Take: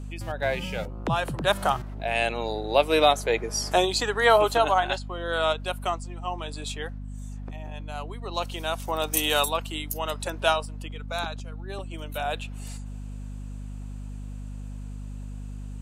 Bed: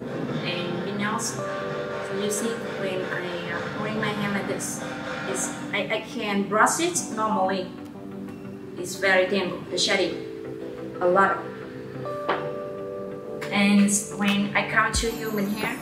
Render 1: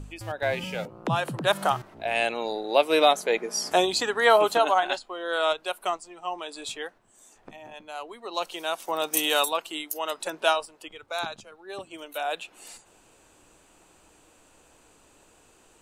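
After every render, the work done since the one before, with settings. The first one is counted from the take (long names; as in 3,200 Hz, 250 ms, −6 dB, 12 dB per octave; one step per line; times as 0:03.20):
hum removal 50 Hz, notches 5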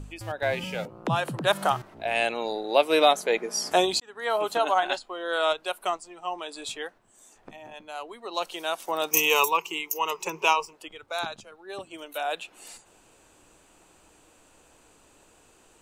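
0:04.00–0:04.85: fade in
0:09.11–0:10.73: EQ curve with evenly spaced ripples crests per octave 0.77, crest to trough 17 dB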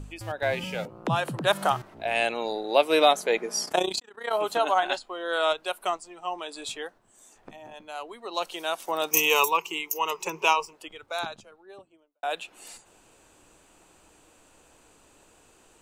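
0:03.65–0:04.33: amplitude modulation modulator 30 Hz, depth 70%
0:06.80–0:07.80: dynamic equaliser 2,300 Hz, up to −5 dB, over −54 dBFS, Q 1.6
0:11.08–0:12.23: fade out and dull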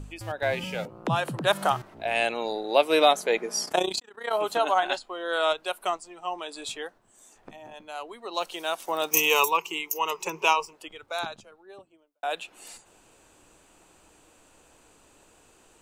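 0:08.40–0:09.42: one scale factor per block 7 bits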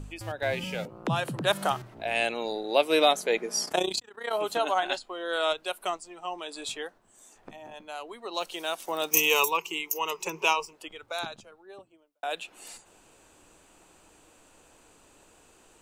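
mains-hum notches 60/120 Hz
dynamic equaliser 980 Hz, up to −4 dB, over −37 dBFS, Q 0.78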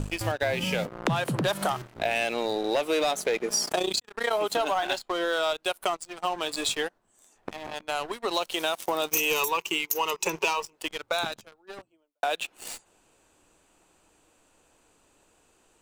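leveller curve on the samples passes 3
downward compressor, threshold −24 dBFS, peak gain reduction 12.5 dB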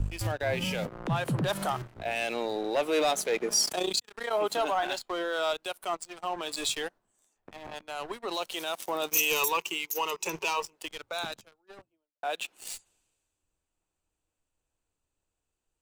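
brickwall limiter −22 dBFS, peak gain reduction 10 dB
multiband upward and downward expander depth 70%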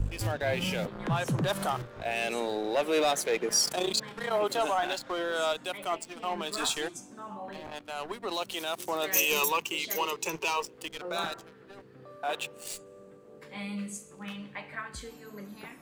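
mix in bed −18 dB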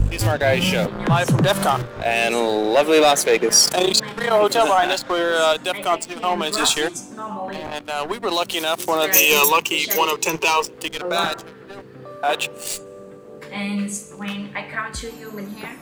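level +12 dB
brickwall limiter −2 dBFS, peak gain reduction 1.5 dB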